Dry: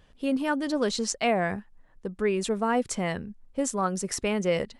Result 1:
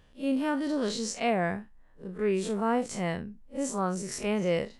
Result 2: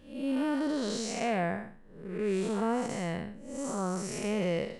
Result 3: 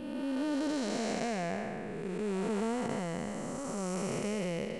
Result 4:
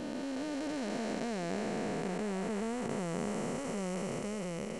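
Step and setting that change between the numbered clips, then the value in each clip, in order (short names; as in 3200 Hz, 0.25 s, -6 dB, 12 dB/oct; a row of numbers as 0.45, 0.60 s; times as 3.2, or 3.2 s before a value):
time blur, width: 85, 239, 682, 1760 ms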